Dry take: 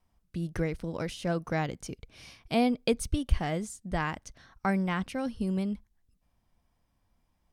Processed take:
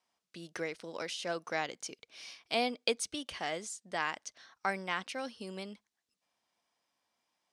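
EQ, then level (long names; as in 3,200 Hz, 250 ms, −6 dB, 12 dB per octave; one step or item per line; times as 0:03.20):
band-pass filter 410–6,300 Hz
high-shelf EQ 2,800 Hz +11.5 dB
−3.5 dB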